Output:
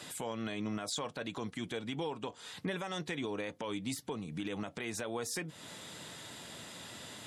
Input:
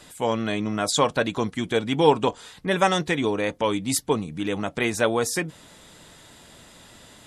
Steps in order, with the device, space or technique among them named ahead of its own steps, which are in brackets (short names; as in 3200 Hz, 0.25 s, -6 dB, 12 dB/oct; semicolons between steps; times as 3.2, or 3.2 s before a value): broadcast voice chain (HPF 89 Hz 24 dB/oct; de-esser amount 45%; compressor 4:1, threshold -35 dBFS, peak gain reduction 19.5 dB; bell 3300 Hz +2.5 dB 1.9 oct; limiter -27 dBFS, peak gain reduction 8.5 dB)